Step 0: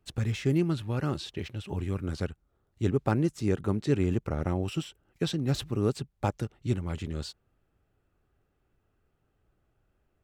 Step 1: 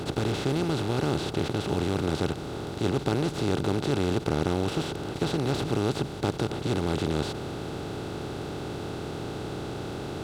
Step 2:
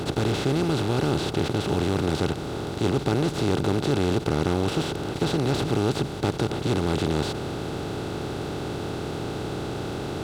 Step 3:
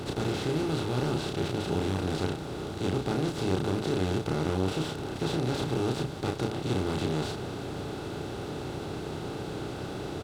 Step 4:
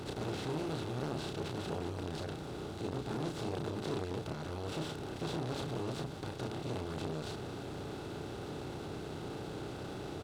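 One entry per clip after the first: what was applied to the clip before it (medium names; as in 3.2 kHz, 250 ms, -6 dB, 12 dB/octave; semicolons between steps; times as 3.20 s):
spectral levelling over time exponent 0.2; trim -6 dB
waveshaping leveller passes 1
doubling 32 ms -3 dB; trim -7 dB
transformer saturation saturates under 660 Hz; trim -5.5 dB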